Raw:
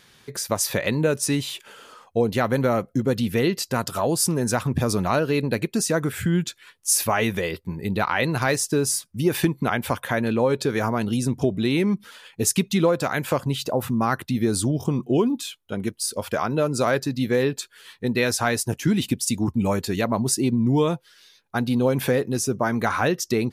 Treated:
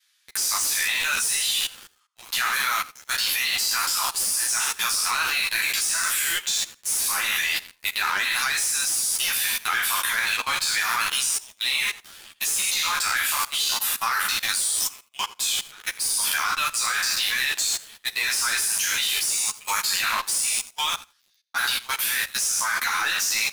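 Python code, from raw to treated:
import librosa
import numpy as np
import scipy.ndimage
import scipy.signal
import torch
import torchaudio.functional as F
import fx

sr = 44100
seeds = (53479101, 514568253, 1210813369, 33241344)

y = fx.spec_trails(x, sr, decay_s=0.62)
y = scipy.signal.sosfilt(scipy.signal.bessel(8, 1800.0, 'highpass', norm='mag', fs=sr, output='sos'), y)
y = fx.high_shelf(y, sr, hz=3400.0, db=6.0)
y = fx.leveller(y, sr, passes=5)
y = fx.level_steps(y, sr, step_db=21)
y = fx.echo_feedback(y, sr, ms=83, feedback_pct=16, wet_db=-22)
y = fx.ensemble(y, sr)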